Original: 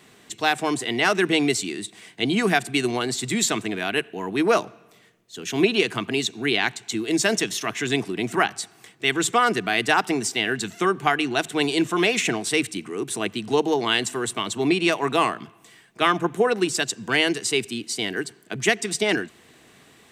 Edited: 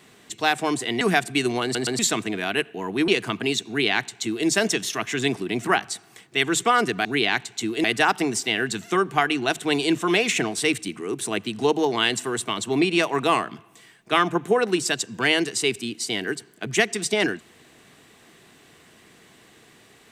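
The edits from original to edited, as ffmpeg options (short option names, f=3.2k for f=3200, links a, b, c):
-filter_complex "[0:a]asplit=8[a][b][c][d][e][f][g][h];[a]atrim=end=1.012[i];[b]atrim=start=2.398:end=3.142[j];[c]atrim=start=3.018:end=3.142[k];[d]atrim=start=3.018:end=3.142[l];[e]atrim=start=3.378:end=4.472[m];[f]atrim=start=5.758:end=9.732[n];[g]atrim=start=6.358:end=7.152[o];[h]atrim=start=9.728[p];[i][j]acrossfade=d=0.004:c1=hsin:c2=hsin[q];[q][k]acrossfade=d=0.004:c1=hsin:c2=hsin[r];[r][l]acrossfade=d=0.004:c1=hsin:c2=hsin[s];[s][m]acrossfade=d=0.004:c1=hsin:c2=hsin[t];[t][n]acrossfade=d=0.004:c1=hsin:c2=hsin[u];[u][o]acrossfade=d=0.004:c1=hsin:c2=hsin[v];[v][p]acrossfade=d=0.004:c1=hsin:c2=hsin"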